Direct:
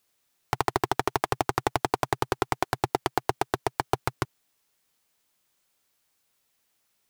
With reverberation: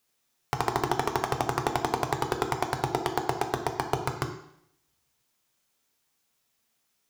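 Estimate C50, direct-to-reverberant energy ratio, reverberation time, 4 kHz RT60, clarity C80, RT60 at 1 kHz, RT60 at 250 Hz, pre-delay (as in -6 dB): 9.0 dB, 5.0 dB, 0.70 s, 0.70 s, 11.5 dB, 0.70 s, 0.75 s, 3 ms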